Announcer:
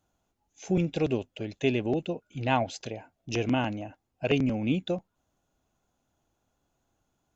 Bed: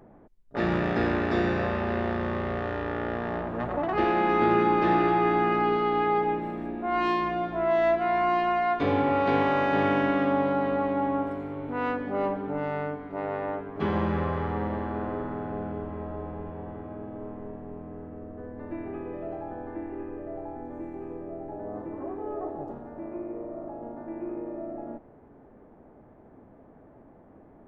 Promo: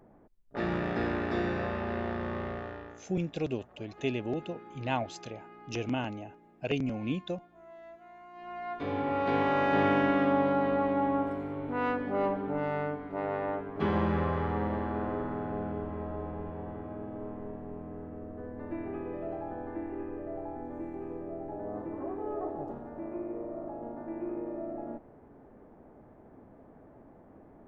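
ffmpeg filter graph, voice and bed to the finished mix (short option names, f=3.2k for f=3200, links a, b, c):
-filter_complex "[0:a]adelay=2400,volume=-5.5dB[a];[1:a]volume=20dB,afade=t=out:st=2.43:d=0.61:silence=0.0841395,afade=t=in:st=8.33:d=1.44:silence=0.0530884[b];[a][b]amix=inputs=2:normalize=0"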